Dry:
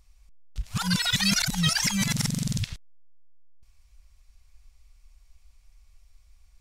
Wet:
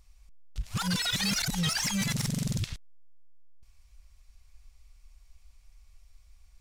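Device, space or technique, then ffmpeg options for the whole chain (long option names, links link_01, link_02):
saturation between pre-emphasis and de-emphasis: -af "highshelf=frequency=9400:gain=9.5,asoftclip=type=tanh:threshold=-23.5dB,highshelf=frequency=9400:gain=-9.5"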